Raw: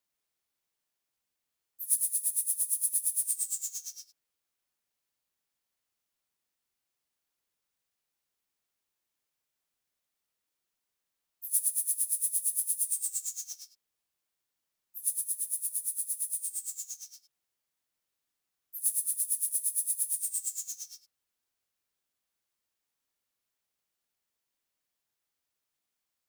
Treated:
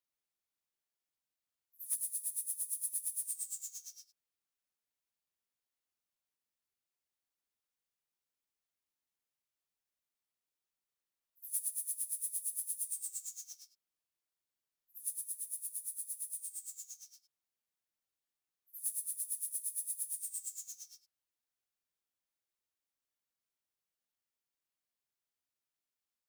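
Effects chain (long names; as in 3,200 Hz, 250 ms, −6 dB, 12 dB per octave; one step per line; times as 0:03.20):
echo ahead of the sound 68 ms −22 dB
gain into a clipping stage and back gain 17.5 dB
level −8.5 dB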